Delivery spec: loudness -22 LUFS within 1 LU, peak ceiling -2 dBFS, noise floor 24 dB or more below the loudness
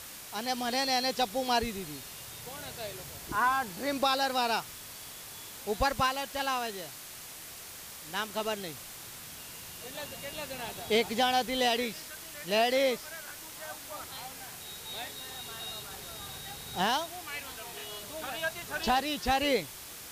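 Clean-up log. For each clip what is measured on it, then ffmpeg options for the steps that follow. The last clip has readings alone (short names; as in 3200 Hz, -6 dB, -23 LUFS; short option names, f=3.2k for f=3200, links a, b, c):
noise floor -46 dBFS; noise floor target -57 dBFS; loudness -32.5 LUFS; peak -16.5 dBFS; loudness target -22.0 LUFS
-> -af "afftdn=nr=11:nf=-46"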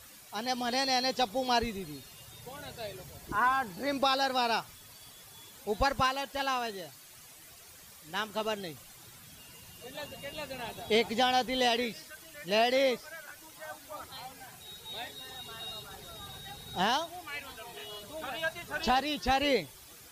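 noise floor -53 dBFS; noise floor target -56 dBFS
-> -af "afftdn=nr=6:nf=-53"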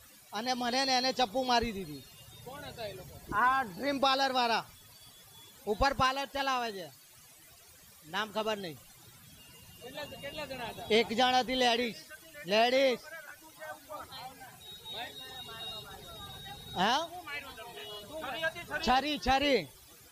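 noise floor -57 dBFS; loudness -31.0 LUFS; peak -16.5 dBFS; loudness target -22.0 LUFS
-> -af "volume=9dB"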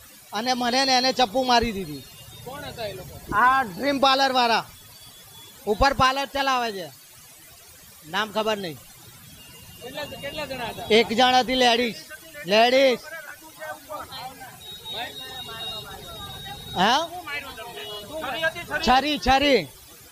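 loudness -22.0 LUFS; peak -7.5 dBFS; noise floor -48 dBFS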